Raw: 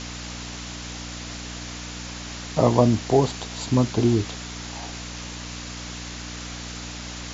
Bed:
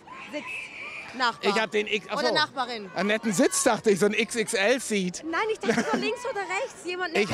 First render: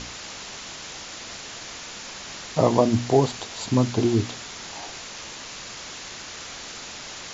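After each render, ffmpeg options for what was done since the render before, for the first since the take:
ffmpeg -i in.wav -af "bandreject=frequency=60:width_type=h:width=4,bandreject=frequency=120:width_type=h:width=4,bandreject=frequency=180:width_type=h:width=4,bandreject=frequency=240:width_type=h:width=4,bandreject=frequency=300:width_type=h:width=4" out.wav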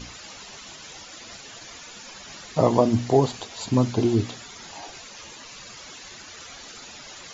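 ffmpeg -i in.wav -af "afftdn=noise_reduction=13:noise_floor=-39" out.wav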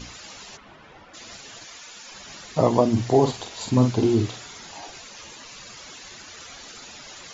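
ffmpeg -i in.wav -filter_complex "[0:a]asplit=3[link_01][link_02][link_03];[link_01]afade=type=out:start_time=0.56:duration=0.02[link_04];[link_02]lowpass=1700,afade=type=in:start_time=0.56:duration=0.02,afade=type=out:start_time=1.13:duration=0.02[link_05];[link_03]afade=type=in:start_time=1.13:duration=0.02[link_06];[link_04][link_05][link_06]amix=inputs=3:normalize=0,asettb=1/sr,asplit=3[link_07][link_08][link_09];[link_07]atrim=end=1.644[link_10];[link_08]atrim=start=1.64:end=2.12,asetpts=PTS-STARTPTS,afade=type=in:duration=0.004:curve=qsin,afade=type=out:start_time=0.476:duration=0.004:curve=qsin,lowshelf=frequency=450:gain=-9[link_11];[link_09]atrim=start=2.116[link_12];[link_10][link_11]acrossfade=duration=0.004:curve1=hsin:curve2=qsin[link_13];[link_13][link_12]acrossfade=duration=0.004:curve1=qsin:curve2=hsin,asettb=1/sr,asplit=3[link_14][link_15][link_16];[link_14]atrim=end=2.924[link_17];[link_15]atrim=start=2.92:end=4.6,asetpts=PTS-STARTPTS,afade=type=in:duration=0.004:curve=qsin,afade=type=out:start_time=1.676:duration=0.004:curve=qsin,asplit=2[link_18][link_19];[link_19]adelay=48,volume=-6dB[link_20];[link_18][link_20]amix=inputs=2:normalize=0,atrim=end_sample=74088[link_21];[link_16]atrim=start=4.596[link_22];[link_17][link_21]acrossfade=duration=0.004:curve1=hsin:curve2=qsin[link_23];[link_23][link_22]acrossfade=duration=0.004:curve1=qsin:curve2=hsin" out.wav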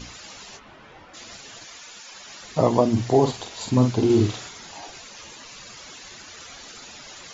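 ffmpeg -i in.wav -filter_complex "[0:a]asettb=1/sr,asplit=3[link_01][link_02][link_03];[link_01]atrim=end=0.534[link_04];[link_02]atrim=start=0.53:end=1.24,asetpts=PTS-STARTPTS,afade=type=in:duration=0.004:curve=qsin,afade=type=out:start_time=0.706:duration=0.004:curve=qsin,asplit=2[link_05][link_06];[link_06]adelay=23,volume=-7dB[link_07];[link_05][link_07]amix=inputs=2:normalize=0,atrim=end_sample=31311[link_08];[link_03]atrim=start=1.236[link_09];[link_04][link_08]acrossfade=duration=0.004:curve1=hsin:curve2=qsin[link_10];[link_10][link_09]acrossfade=duration=0.004:curve1=qsin:curve2=hsin,asettb=1/sr,asplit=3[link_11][link_12][link_13];[link_11]atrim=end=2.004[link_14];[link_12]atrim=start=2:end=2.42,asetpts=PTS-STARTPTS,afade=type=in:duration=0.004:curve=qsin,afade=type=out:start_time=0.416:duration=0.004:curve=qsin,lowshelf=frequency=280:gain=-10.5[link_15];[link_13]atrim=start=2.416[link_16];[link_14][link_15]acrossfade=duration=0.004:curve1=hsin:curve2=qsin[link_17];[link_17][link_16]acrossfade=duration=0.004:curve1=qsin:curve2=hsin,asettb=1/sr,asplit=3[link_18][link_19][link_20];[link_18]atrim=end=4.054[link_21];[link_19]atrim=start=4.05:end=4.49,asetpts=PTS-STARTPTS,afade=type=in:duration=0.004:curve=qsin,afade=type=out:start_time=0.436:duration=0.004:curve=qsin,asplit=2[link_22][link_23];[link_23]adelay=48,volume=-5dB[link_24];[link_22][link_24]amix=inputs=2:normalize=0,atrim=end_sample=19404[link_25];[link_20]atrim=start=4.486[link_26];[link_21][link_25]acrossfade=duration=0.004:curve1=hsin:curve2=qsin[link_27];[link_27][link_26]acrossfade=duration=0.004:curve1=qsin:curve2=hsin" out.wav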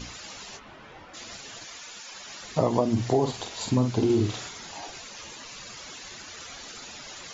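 ffmpeg -i in.wav -af "acompressor=threshold=-20dB:ratio=3" out.wav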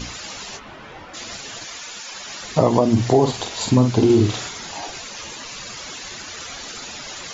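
ffmpeg -i in.wav -af "volume=8dB,alimiter=limit=-3dB:level=0:latency=1" out.wav

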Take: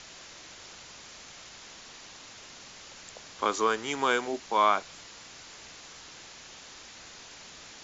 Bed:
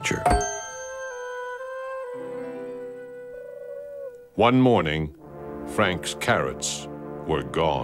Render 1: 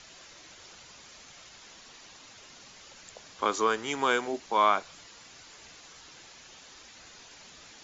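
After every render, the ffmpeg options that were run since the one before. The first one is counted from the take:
ffmpeg -i in.wav -af "afftdn=noise_reduction=6:noise_floor=-49" out.wav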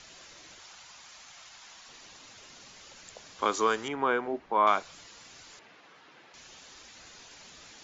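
ffmpeg -i in.wav -filter_complex "[0:a]asettb=1/sr,asplit=3[link_01][link_02][link_03];[link_01]atrim=end=0.594[link_04];[link_02]atrim=start=0.59:end=1.89,asetpts=PTS-STARTPTS,afade=type=in:duration=0.004:curve=qsin,afade=type=out:start_time=1.296:duration=0.004:curve=qsin,lowshelf=frequency=610:width_type=q:width=1.5:gain=-7[link_05];[link_03]atrim=start=1.886[link_06];[link_04][link_05]acrossfade=duration=0.004:curve1=hsin:curve2=qsin[link_07];[link_07][link_06]acrossfade=duration=0.004:curve1=qsin:curve2=hsin,asettb=1/sr,asplit=3[link_08][link_09][link_10];[link_08]atrim=end=3.884[link_11];[link_09]atrim=start=3.88:end=4.67,asetpts=PTS-STARTPTS,afade=type=in:duration=0.004:curve=qsin,afade=type=out:start_time=0.786:duration=0.004:curve=qsin,lowpass=1700[link_12];[link_10]atrim=start=4.666[link_13];[link_11][link_12]acrossfade=duration=0.004:curve1=hsin:curve2=qsin[link_14];[link_14][link_13]acrossfade=duration=0.004:curve1=qsin:curve2=hsin,asettb=1/sr,asplit=3[link_15][link_16][link_17];[link_15]atrim=end=5.594[link_18];[link_16]atrim=start=5.59:end=6.34,asetpts=PTS-STARTPTS,afade=type=in:duration=0.004:curve=qsin,afade=type=out:start_time=0.746:duration=0.004:curve=qsin,highpass=180,lowpass=2400[link_19];[link_17]atrim=start=6.336[link_20];[link_18][link_19]acrossfade=duration=0.004:curve1=hsin:curve2=qsin[link_21];[link_21][link_20]acrossfade=duration=0.004:curve1=qsin:curve2=hsin" out.wav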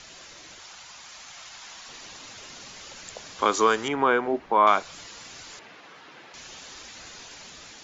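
ffmpeg -i in.wav -filter_complex "[0:a]asplit=2[link_01][link_02];[link_02]alimiter=limit=-21dB:level=0:latency=1:release=294,volume=-2.5dB[link_03];[link_01][link_03]amix=inputs=2:normalize=0,dynaudnorm=framelen=520:gausssize=5:maxgain=3dB" out.wav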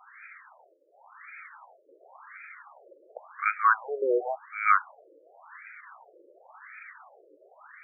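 ffmpeg -i in.wav -af "crystalizer=i=5.5:c=0,afftfilt=real='re*between(b*sr/1024,420*pow(1800/420,0.5+0.5*sin(2*PI*0.92*pts/sr))/1.41,420*pow(1800/420,0.5+0.5*sin(2*PI*0.92*pts/sr))*1.41)':imag='im*between(b*sr/1024,420*pow(1800/420,0.5+0.5*sin(2*PI*0.92*pts/sr))/1.41,420*pow(1800/420,0.5+0.5*sin(2*PI*0.92*pts/sr))*1.41)':win_size=1024:overlap=0.75" out.wav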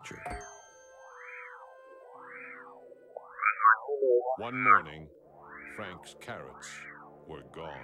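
ffmpeg -i in.wav -i bed.wav -filter_complex "[1:a]volume=-20dB[link_01];[0:a][link_01]amix=inputs=2:normalize=0" out.wav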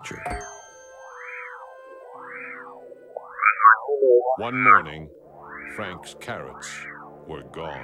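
ffmpeg -i in.wav -af "volume=9dB,alimiter=limit=-2dB:level=0:latency=1" out.wav

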